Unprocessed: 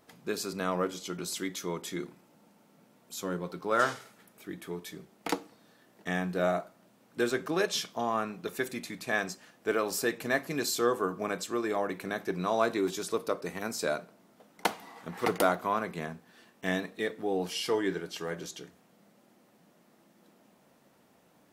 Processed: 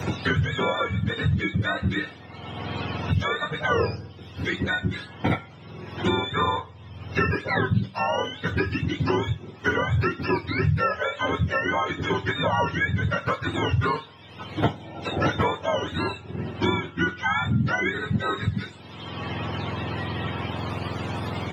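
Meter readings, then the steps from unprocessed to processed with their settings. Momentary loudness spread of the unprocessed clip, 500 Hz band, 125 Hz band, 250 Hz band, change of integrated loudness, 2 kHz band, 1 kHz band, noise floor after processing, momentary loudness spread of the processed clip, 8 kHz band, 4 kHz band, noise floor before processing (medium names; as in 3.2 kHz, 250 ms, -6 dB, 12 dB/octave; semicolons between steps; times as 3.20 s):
13 LU, +3.0 dB, +18.0 dB, +7.0 dB, +6.0 dB, +9.5 dB, +7.0 dB, -44 dBFS, 10 LU, -10.0 dB, +7.0 dB, -64 dBFS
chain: spectrum inverted on a logarithmic axis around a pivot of 800 Hz; doubling 26 ms -12.5 dB; three bands compressed up and down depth 100%; trim +7.5 dB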